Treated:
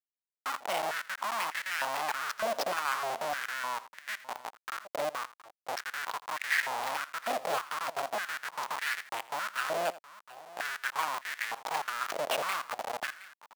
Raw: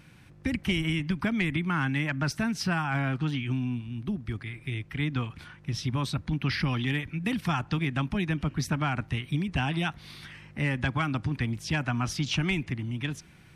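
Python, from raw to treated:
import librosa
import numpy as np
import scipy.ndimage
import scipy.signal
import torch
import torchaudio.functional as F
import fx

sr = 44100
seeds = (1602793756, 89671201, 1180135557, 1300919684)

p1 = fx.schmitt(x, sr, flips_db=-28.5)
p2 = p1 + fx.echo_multitap(p1, sr, ms=(83, 718), db=(-18.0, -17.5), dry=0)
y = fx.filter_held_highpass(p2, sr, hz=3.3, low_hz=620.0, high_hz=1800.0)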